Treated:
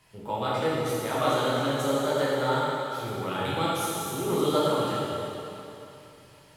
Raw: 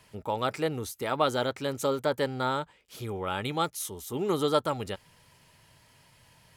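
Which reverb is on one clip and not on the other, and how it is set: plate-style reverb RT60 3 s, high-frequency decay 0.95×, DRR -8 dB; gain -5.5 dB

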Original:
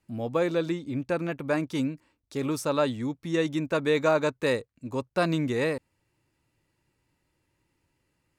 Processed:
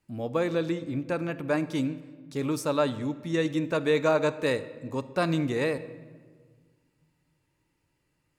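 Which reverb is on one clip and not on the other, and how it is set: shoebox room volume 1700 m³, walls mixed, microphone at 0.43 m; gain -1 dB

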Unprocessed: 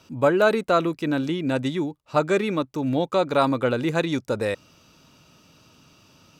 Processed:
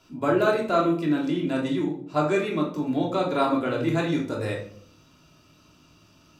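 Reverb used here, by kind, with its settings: shoebox room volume 630 m³, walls furnished, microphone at 3.1 m; gain -7 dB

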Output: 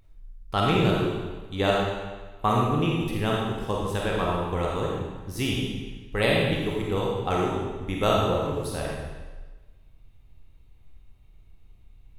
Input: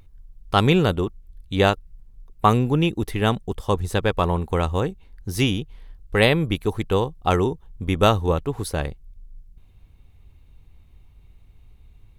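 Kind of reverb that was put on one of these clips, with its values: digital reverb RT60 1.3 s, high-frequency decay 0.95×, pre-delay 5 ms, DRR -3.5 dB; gain -8.5 dB

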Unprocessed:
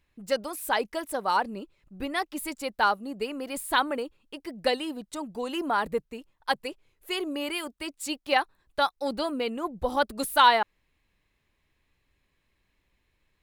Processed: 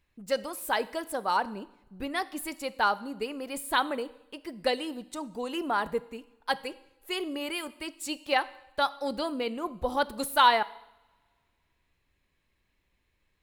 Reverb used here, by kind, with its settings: two-slope reverb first 0.77 s, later 2.3 s, from -24 dB, DRR 15 dB; gain -2 dB

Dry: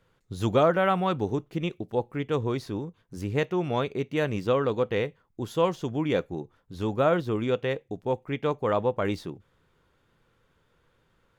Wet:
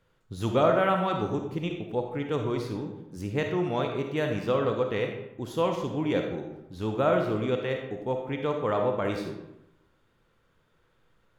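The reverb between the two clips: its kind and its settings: digital reverb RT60 0.9 s, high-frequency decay 0.65×, pre-delay 10 ms, DRR 3 dB; gain -2.5 dB

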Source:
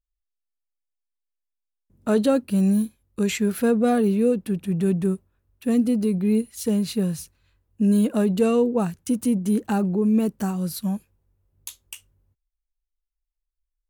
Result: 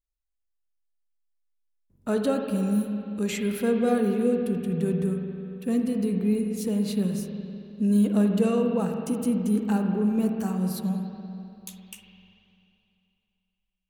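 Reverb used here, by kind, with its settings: spring tank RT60 2.8 s, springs 43/49 ms, chirp 55 ms, DRR 3 dB; gain -5 dB

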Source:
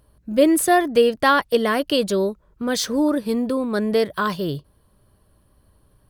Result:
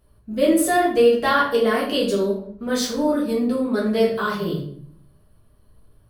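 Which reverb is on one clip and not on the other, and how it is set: shoebox room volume 83 m³, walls mixed, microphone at 1.6 m; gain -8 dB

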